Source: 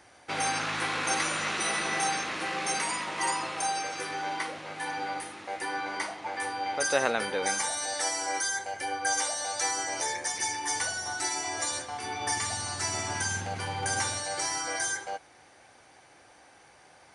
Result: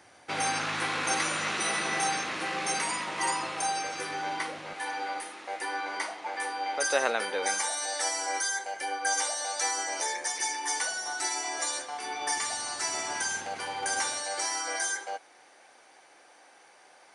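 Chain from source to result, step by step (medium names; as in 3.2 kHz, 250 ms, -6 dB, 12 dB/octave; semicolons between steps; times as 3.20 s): high-pass 87 Hz 12 dB/octave, from 4.73 s 340 Hz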